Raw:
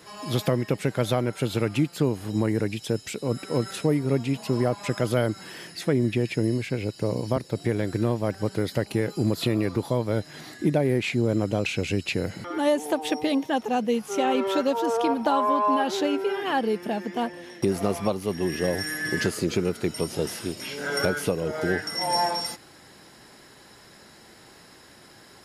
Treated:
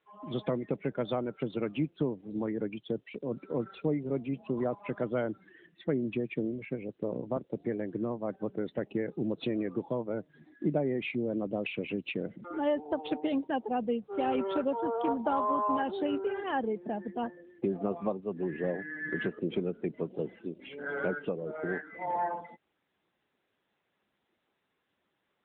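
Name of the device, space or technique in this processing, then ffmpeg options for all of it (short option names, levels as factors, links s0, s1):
mobile call with aggressive noise cancelling: -filter_complex "[0:a]asplit=3[s0][s1][s2];[s0]afade=t=out:st=21.18:d=0.02[s3];[s1]lowshelf=f=490:g=-2.5,afade=t=in:st=21.18:d=0.02,afade=t=out:st=21.98:d=0.02[s4];[s2]afade=t=in:st=21.98:d=0.02[s5];[s3][s4][s5]amix=inputs=3:normalize=0,highpass=f=150:w=0.5412,highpass=f=150:w=1.3066,afftdn=nr=21:nf=-34,volume=0.501" -ar 8000 -c:a libopencore_amrnb -b:a 10200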